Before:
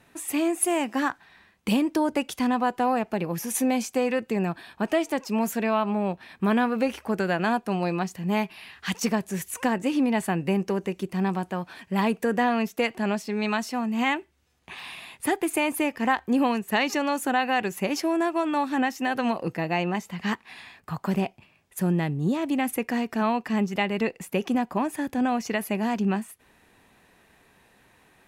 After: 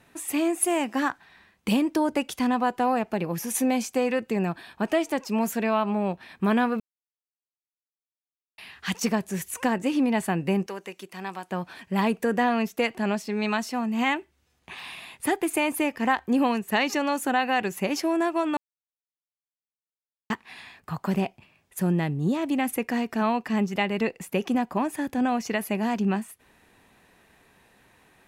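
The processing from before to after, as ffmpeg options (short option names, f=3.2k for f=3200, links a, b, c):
-filter_complex "[0:a]asettb=1/sr,asplit=3[a][b][c];[a]atrim=end=10.664[d];[b]atrim=start=10.66:end=11.51,asetpts=PTS-STARTPTS,afade=t=in:d=0.004:c=qsin,afade=t=out:st=0.846:d=0.004:c=qsin,highpass=f=1.1k:p=1[e];[c]atrim=start=11.506[f];[d][e]acrossfade=d=0.004:c1=hsin:c2=qsin[g];[g][f]acrossfade=d=0.004:c1=qsin:c2=hsin,asplit=5[h][i][j][k][l];[h]atrim=end=6.8,asetpts=PTS-STARTPTS,afade=t=out:st=6.796:d=0.004:c=hsin[m];[i]atrim=start=6.8:end=8.58,asetpts=PTS-STARTPTS,volume=0[n];[j]atrim=start=8.58:end=18.57,asetpts=PTS-STARTPTS,afade=t=in:d=0.004:c=hsin,afade=t=out:st=9.986:d=0.004:c=hsin[o];[k]atrim=start=18.57:end=20.3,asetpts=PTS-STARTPTS,volume=0[p];[l]atrim=start=20.3,asetpts=PTS-STARTPTS,afade=t=in:d=0.004:c=hsin[q];[m][n][o][p][q]concat=n=5:v=0:a=1"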